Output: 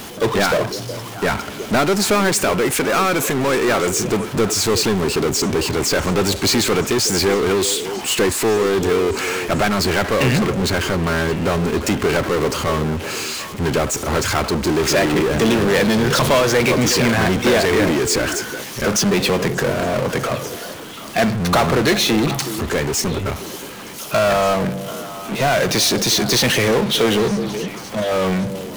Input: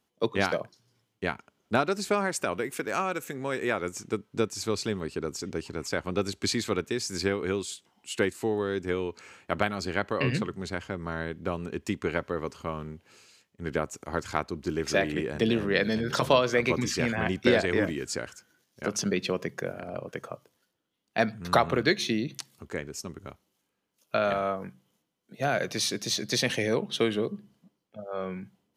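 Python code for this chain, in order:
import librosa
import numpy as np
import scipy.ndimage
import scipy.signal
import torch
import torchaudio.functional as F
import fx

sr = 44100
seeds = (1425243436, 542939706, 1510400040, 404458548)

y = fx.power_curve(x, sr, exponent=0.35)
y = fx.echo_stepped(y, sr, ms=369, hz=380.0, octaves=1.4, feedback_pct=70, wet_db=-8.5)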